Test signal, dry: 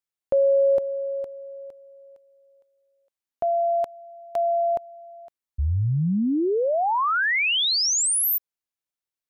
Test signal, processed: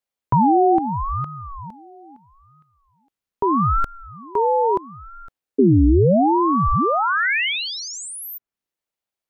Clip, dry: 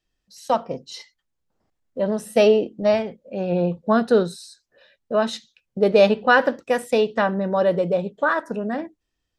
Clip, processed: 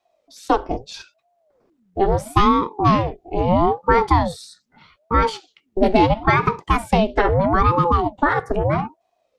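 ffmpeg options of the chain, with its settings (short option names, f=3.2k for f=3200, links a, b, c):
-filter_complex "[0:a]acrossover=split=670|2400[a][b][c];[a]acompressor=threshold=-21dB:ratio=4[d];[b]acompressor=threshold=-24dB:ratio=4[e];[c]acompressor=threshold=-35dB:ratio=4[f];[d][e][f]amix=inputs=3:normalize=0,bass=f=250:g=6,treble=f=4k:g=-4,aeval=exprs='val(0)*sin(2*PI*440*n/s+440*0.6/0.77*sin(2*PI*0.77*n/s))':c=same,volume=7.5dB"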